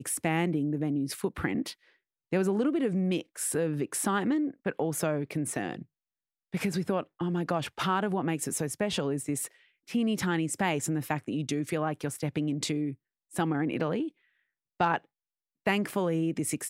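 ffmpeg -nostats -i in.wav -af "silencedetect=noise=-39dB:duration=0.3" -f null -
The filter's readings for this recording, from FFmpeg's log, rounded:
silence_start: 1.72
silence_end: 2.32 | silence_duration: 0.60
silence_start: 5.82
silence_end: 6.54 | silence_duration: 0.72
silence_start: 9.47
silence_end: 9.89 | silence_duration: 0.42
silence_start: 12.93
silence_end: 13.34 | silence_duration: 0.41
silence_start: 14.09
silence_end: 14.80 | silence_duration: 0.71
silence_start: 14.98
silence_end: 15.67 | silence_duration: 0.69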